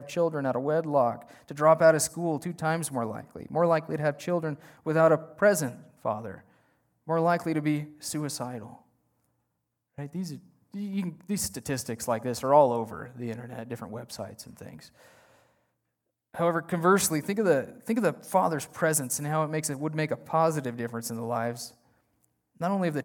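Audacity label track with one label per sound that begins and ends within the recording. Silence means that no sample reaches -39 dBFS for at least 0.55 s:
7.080000	8.760000	sound
9.980000	14.850000	sound
16.340000	21.680000	sound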